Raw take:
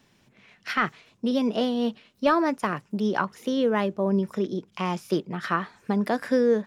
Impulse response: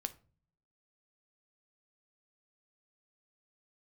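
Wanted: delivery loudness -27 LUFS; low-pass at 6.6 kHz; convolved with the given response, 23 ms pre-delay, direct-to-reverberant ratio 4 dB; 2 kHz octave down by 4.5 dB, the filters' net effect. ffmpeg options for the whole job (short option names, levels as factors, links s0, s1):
-filter_complex "[0:a]lowpass=6600,equalizer=f=2000:t=o:g=-6,asplit=2[s0][s1];[1:a]atrim=start_sample=2205,adelay=23[s2];[s1][s2]afir=irnorm=-1:irlink=0,volume=0.75[s3];[s0][s3]amix=inputs=2:normalize=0,volume=0.841"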